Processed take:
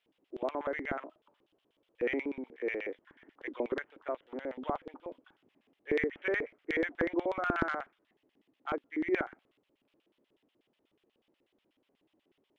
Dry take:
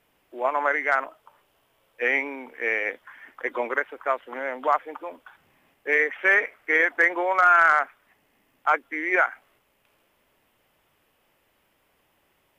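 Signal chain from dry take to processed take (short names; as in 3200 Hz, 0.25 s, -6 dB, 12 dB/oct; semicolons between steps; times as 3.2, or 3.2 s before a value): LFO band-pass square 8.2 Hz 320–3500 Hz; tilt shelf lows +5.5 dB, about 1100 Hz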